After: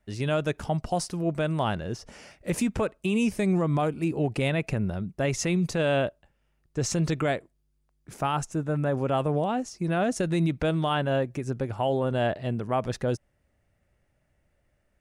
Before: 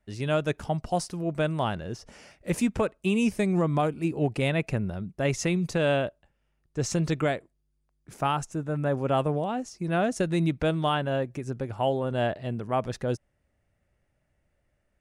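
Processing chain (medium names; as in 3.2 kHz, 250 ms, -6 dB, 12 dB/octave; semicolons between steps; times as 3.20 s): peak limiter -19 dBFS, peak gain reduction 5 dB; trim +2.5 dB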